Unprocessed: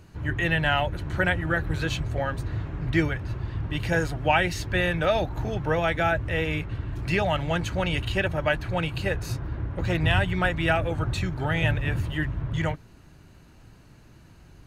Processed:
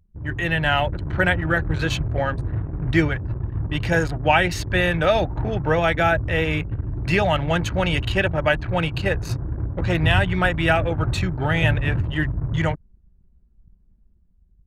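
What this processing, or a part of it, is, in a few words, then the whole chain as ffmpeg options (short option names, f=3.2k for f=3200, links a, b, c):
voice memo with heavy noise removal: -af "anlmdn=2.51,dynaudnorm=f=110:g=11:m=5dB"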